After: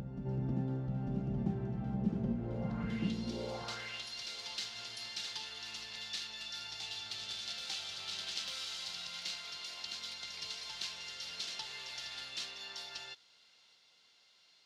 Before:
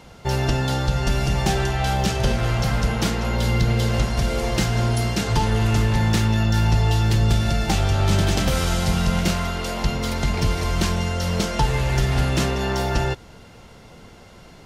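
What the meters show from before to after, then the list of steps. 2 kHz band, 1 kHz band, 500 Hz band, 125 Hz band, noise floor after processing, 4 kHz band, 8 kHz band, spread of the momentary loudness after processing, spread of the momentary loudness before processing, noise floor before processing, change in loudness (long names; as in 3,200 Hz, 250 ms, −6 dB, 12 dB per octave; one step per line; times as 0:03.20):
−18.0 dB, −24.5 dB, −21.5 dB, −22.0 dB, −67 dBFS, −10.0 dB, −16.5 dB, 6 LU, 4 LU, −45 dBFS, −18.0 dB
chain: band-pass filter sweep 210 Hz → 4,100 Hz, 0:03.24–0:04.04
backwards echo 897 ms −4.5 dB
level −7.5 dB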